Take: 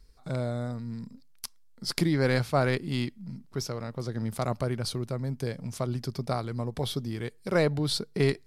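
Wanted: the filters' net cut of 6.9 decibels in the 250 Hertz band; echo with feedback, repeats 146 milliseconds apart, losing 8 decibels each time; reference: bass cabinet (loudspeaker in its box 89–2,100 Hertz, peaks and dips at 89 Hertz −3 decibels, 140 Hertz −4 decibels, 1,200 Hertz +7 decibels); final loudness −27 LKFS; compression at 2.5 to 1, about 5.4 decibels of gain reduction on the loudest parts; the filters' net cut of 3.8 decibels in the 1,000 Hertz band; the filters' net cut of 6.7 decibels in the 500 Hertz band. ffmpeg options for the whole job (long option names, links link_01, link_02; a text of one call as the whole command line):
ffmpeg -i in.wav -af "equalizer=frequency=250:width_type=o:gain=-7,equalizer=frequency=500:width_type=o:gain=-4.5,equalizer=frequency=1000:width_type=o:gain=-7.5,acompressor=threshold=-32dB:ratio=2.5,highpass=frequency=89:width=0.5412,highpass=frequency=89:width=1.3066,equalizer=frequency=89:width_type=q:width=4:gain=-3,equalizer=frequency=140:width_type=q:width=4:gain=-4,equalizer=frequency=1200:width_type=q:width=4:gain=7,lowpass=frequency=2100:width=0.5412,lowpass=frequency=2100:width=1.3066,aecho=1:1:146|292|438|584|730:0.398|0.159|0.0637|0.0255|0.0102,volume=11.5dB" out.wav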